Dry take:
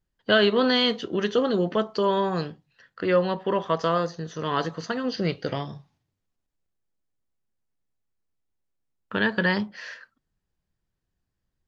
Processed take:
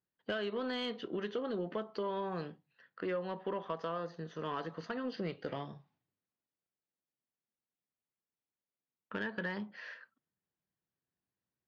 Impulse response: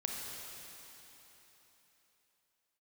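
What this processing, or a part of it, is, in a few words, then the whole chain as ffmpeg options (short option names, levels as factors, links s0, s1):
AM radio: -af "highpass=160,lowpass=3200,acompressor=threshold=0.0562:ratio=6,asoftclip=type=tanh:threshold=0.133,volume=0.422"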